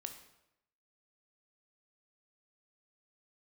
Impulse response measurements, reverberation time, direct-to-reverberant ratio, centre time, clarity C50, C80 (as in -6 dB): 0.85 s, 6.0 dB, 16 ms, 9.0 dB, 11.5 dB